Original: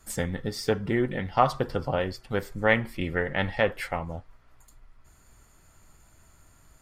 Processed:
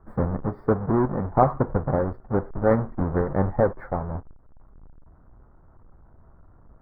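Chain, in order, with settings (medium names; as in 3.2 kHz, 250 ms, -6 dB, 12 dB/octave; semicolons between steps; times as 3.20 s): square wave that keeps the level; inverse Chebyshev low-pass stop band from 2.6 kHz, stop band 40 dB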